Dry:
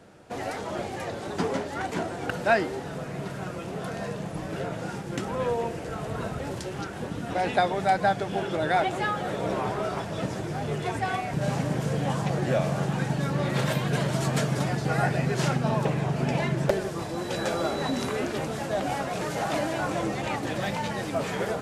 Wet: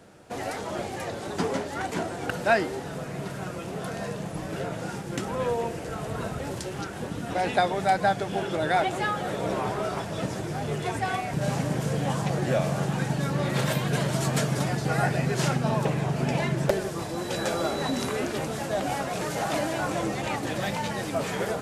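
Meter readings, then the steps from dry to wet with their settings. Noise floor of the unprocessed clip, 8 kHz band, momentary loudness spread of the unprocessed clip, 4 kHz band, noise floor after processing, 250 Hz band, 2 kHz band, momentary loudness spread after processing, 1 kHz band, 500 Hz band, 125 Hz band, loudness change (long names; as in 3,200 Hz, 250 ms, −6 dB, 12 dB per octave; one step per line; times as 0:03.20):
−36 dBFS, +3.5 dB, 9 LU, +1.5 dB, −36 dBFS, 0.0 dB, +0.5 dB, 9 LU, 0.0 dB, 0.0 dB, 0.0 dB, 0.0 dB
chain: high-shelf EQ 6,800 Hz +6 dB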